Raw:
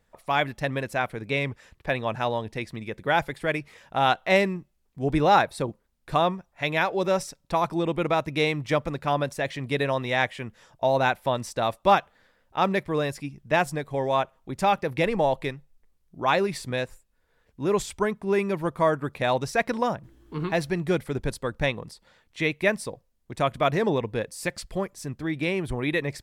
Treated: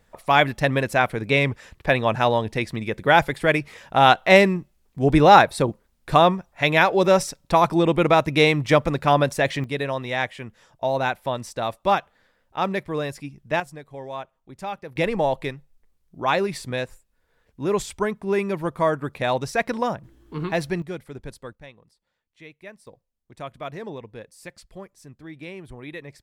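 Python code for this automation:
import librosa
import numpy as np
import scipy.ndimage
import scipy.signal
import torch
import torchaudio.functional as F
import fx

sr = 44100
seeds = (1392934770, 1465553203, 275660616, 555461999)

y = fx.gain(x, sr, db=fx.steps((0.0, 7.0), (9.64, -1.0), (13.6, -9.5), (14.96, 1.0), (20.82, -8.5), (21.53, -19.0), (22.87, -11.0)))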